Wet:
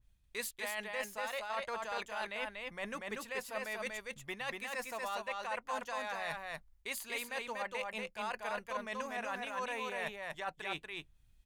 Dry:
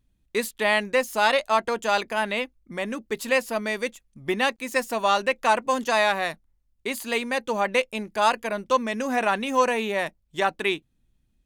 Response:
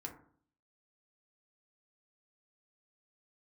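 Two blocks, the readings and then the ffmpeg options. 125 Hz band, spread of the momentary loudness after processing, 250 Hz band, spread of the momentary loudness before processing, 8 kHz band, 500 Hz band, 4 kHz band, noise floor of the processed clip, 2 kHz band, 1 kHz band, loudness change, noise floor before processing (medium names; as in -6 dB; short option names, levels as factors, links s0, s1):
-15.0 dB, 4 LU, -19.0 dB, 10 LU, -11.0 dB, -17.0 dB, -14.0 dB, -67 dBFS, -13.0 dB, -15.5 dB, -15.0 dB, -70 dBFS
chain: -af "equalizer=f=280:w=0.86:g=-14.5,alimiter=limit=0.168:level=0:latency=1:release=34,areverse,acompressor=threshold=0.0126:ratio=6,areverse,aecho=1:1:239:0.708,adynamicequalizer=threshold=0.00251:dfrequency=2400:dqfactor=0.7:tfrequency=2400:tqfactor=0.7:attack=5:release=100:ratio=0.375:range=2.5:mode=cutabove:tftype=highshelf,volume=1.12"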